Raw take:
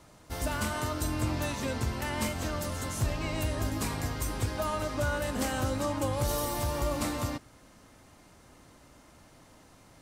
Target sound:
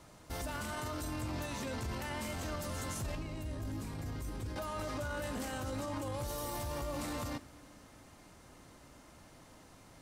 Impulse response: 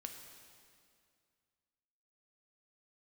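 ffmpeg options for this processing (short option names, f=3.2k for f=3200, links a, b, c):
-filter_complex "[0:a]alimiter=level_in=6dB:limit=-24dB:level=0:latency=1:release=12,volume=-6dB,asettb=1/sr,asplit=3[a][b][c];[a]atrim=end=3.154[d];[b]atrim=start=3.15:end=4.56,asetpts=PTS-STARTPTS,afade=t=in:d=0.004:c=qsin,afade=t=out:st=1.406:d=0.004:c=qsin,acrossover=split=400[e][f];[f]acompressor=threshold=-55dB:ratio=2[g];[e][g]amix=inputs=2:normalize=0[h];[c]atrim=start=4.556[i];[d][h]acrossfade=d=0.004:c1=hsin:c2=qsin[j];[j][i]acrossfade=d=0.004:c1=qsin:c2=hsin,asplit=2[k][l];[1:a]atrim=start_sample=2205,asetrate=35280,aresample=44100[m];[l][m]afir=irnorm=-1:irlink=0,volume=-10.5dB[n];[k][n]amix=inputs=2:normalize=0,volume=-2.5dB"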